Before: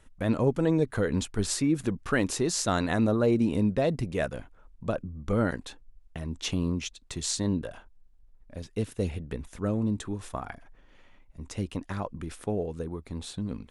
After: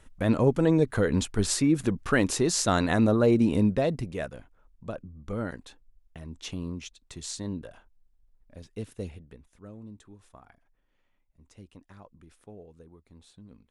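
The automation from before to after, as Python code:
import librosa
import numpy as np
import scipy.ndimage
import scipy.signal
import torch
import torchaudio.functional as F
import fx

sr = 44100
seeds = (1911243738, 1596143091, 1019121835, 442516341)

y = fx.gain(x, sr, db=fx.line((3.64, 2.5), (4.38, -6.5), (9.01, -6.5), (9.45, -17.0)))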